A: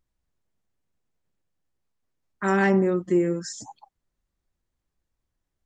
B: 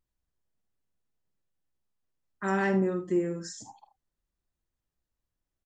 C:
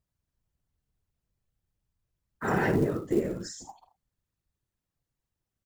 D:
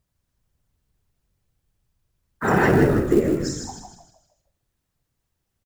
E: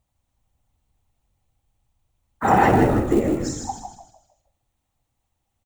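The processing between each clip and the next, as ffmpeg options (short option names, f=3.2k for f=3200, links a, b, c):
-af "bandreject=f=2.2k:w=22,aecho=1:1:48|78:0.282|0.2,volume=-6dB"
-af "afftfilt=real='hypot(re,im)*cos(2*PI*random(0))':imag='hypot(re,im)*sin(2*PI*random(1))':win_size=512:overlap=0.75,acrusher=bits=7:mode=log:mix=0:aa=0.000001,volume=6.5dB"
-filter_complex "[0:a]asplit=6[a][b][c][d][e][f];[b]adelay=156,afreqshift=-45,volume=-6dB[g];[c]adelay=312,afreqshift=-90,volume=-14.2dB[h];[d]adelay=468,afreqshift=-135,volume=-22.4dB[i];[e]adelay=624,afreqshift=-180,volume=-30.5dB[j];[f]adelay=780,afreqshift=-225,volume=-38.7dB[k];[a][g][h][i][j][k]amix=inputs=6:normalize=0,volume=8dB"
-af "equalizer=f=160:t=o:w=0.33:g=-9,equalizer=f=400:t=o:w=0.33:g=-7,equalizer=f=800:t=o:w=0.33:g=9,equalizer=f=1.6k:t=o:w=0.33:g=-7,equalizer=f=5k:t=o:w=0.33:g=-7,equalizer=f=12.5k:t=o:w=0.33:g=-8,volume=2dB"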